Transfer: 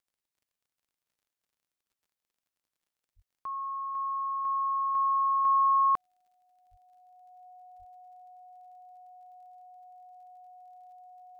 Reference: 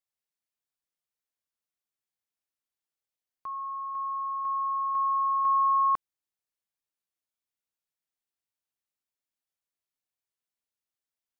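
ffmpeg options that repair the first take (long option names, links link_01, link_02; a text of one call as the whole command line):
ffmpeg -i in.wav -filter_complex "[0:a]adeclick=threshold=4,bandreject=frequency=730:width=30,asplit=3[link_01][link_02][link_03];[link_01]afade=type=out:start_time=3.15:duration=0.02[link_04];[link_02]highpass=frequency=140:width=0.5412,highpass=frequency=140:width=1.3066,afade=type=in:start_time=3.15:duration=0.02,afade=type=out:start_time=3.27:duration=0.02[link_05];[link_03]afade=type=in:start_time=3.27:duration=0.02[link_06];[link_04][link_05][link_06]amix=inputs=3:normalize=0,asplit=3[link_07][link_08][link_09];[link_07]afade=type=out:start_time=6.7:duration=0.02[link_10];[link_08]highpass=frequency=140:width=0.5412,highpass=frequency=140:width=1.3066,afade=type=in:start_time=6.7:duration=0.02,afade=type=out:start_time=6.82:duration=0.02[link_11];[link_09]afade=type=in:start_time=6.82:duration=0.02[link_12];[link_10][link_11][link_12]amix=inputs=3:normalize=0,asplit=3[link_13][link_14][link_15];[link_13]afade=type=out:start_time=7.78:duration=0.02[link_16];[link_14]highpass=frequency=140:width=0.5412,highpass=frequency=140:width=1.3066,afade=type=in:start_time=7.78:duration=0.02,afade=type=out:start_time=7.9:duration=0.02[link_17];[link_15]afade=type=in:start_time=7.9:duration=0.02[link_18];[link_16][link_17][link_18]amix=inputs=3:normalize=0" out.wav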